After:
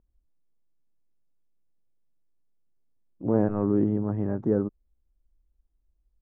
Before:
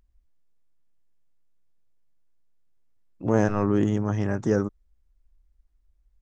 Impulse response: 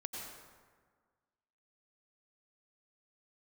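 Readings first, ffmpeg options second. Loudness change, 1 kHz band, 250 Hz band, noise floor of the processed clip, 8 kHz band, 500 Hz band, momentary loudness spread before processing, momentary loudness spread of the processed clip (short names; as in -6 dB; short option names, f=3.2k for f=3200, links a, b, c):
-1.5 dB, -6.5 dB, -0.5 dB, -73 dBFS, n/a, -1.5 dB, 6 LU, 7 LU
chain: -af "lowpass=1.1k,equalizer=f=280:t=o:w=2.4:g=6.5,volume=-6.5dB"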